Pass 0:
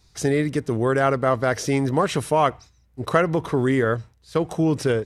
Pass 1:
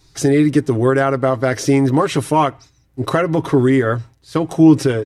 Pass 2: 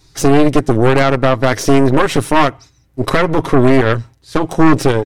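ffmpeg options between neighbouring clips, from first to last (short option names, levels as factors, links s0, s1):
-af "aecho=1:1:7.4:0.54,alimiter=limit=0.282:level=0:latency=1:release=324,equalizer=f=320:t=o:w=0.2:g=11,volume=1.78"
-af "aeval=exprs='0.891*(cos(1*acos(clip(val(0)/0.891,-1,1)))-cos(1*PI/2))+0.178*(cos(5*acos(clip(val(0)/0.891,-1,1)))-cos(5*PI/2))+0.355*(cos(6*acos(clip(val(0)/0.891,-1,1)))-cos(6*PI/2))':c=same,volume=0.708"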